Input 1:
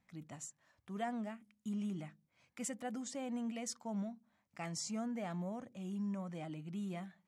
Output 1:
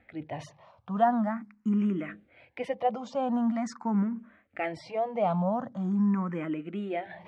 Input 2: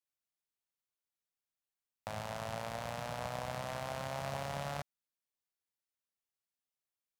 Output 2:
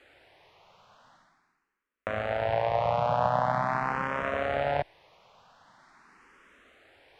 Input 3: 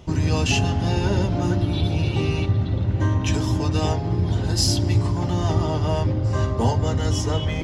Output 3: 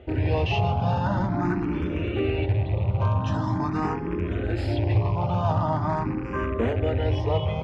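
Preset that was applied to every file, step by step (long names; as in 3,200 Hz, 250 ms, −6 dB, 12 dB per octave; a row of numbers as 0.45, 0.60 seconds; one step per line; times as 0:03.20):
loose part that buzzes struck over −21 dBFS, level −29 dBFS
low-shelf EQ 170 Hz −8.5 dB
in parallel at −8 dB: wrap-around overflow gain 16.5 dB
on the sum: low-pass filter 1,600 Hz 12 dB per octave
parametric band 250 Hz −3 dB 3 octaves
reversed playback
upward compression, threshold −47 dBFS
reversed playback
frequency shifter mixed with the dry sound +0.44 Hz
normalise the peak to −12 dBFS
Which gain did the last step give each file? +17.5, +16.5, +3.5 decibels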